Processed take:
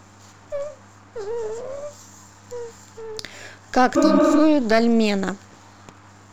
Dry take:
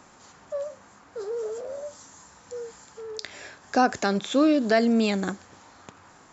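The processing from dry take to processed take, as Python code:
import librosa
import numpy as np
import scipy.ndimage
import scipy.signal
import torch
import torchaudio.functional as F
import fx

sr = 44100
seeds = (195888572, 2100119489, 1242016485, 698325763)

y = np.where(x < 0.0, 10.0 ** (-7.0 / 20.0) * x, x)
y = fx.dmg_buzz(y, sr, base_hz=100.0, harmonics=3, level_db=-57.0, tilt_db=-6, odd_only=False)
y = fx.spec_repair(y, sr, seeds[0], start_s=3.99, length_s=0.38, low_hz=260.0, high_hz=3800.0, source='after')
y = y * librosa.db_to_amplitude(5.5)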